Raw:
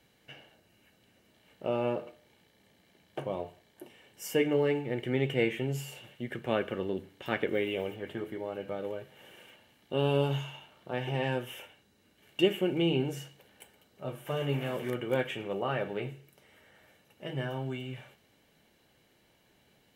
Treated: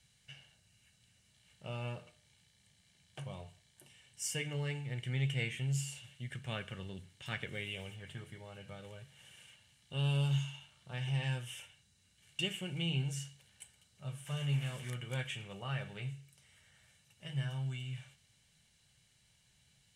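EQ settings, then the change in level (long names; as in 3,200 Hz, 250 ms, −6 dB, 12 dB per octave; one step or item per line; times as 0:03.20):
drawn EQ curve 140 Hz 0 dB, 310 Hz −22 dB, 9,000 Hz +6 dB, 14,000 Hz −16 dB
+1.0 dB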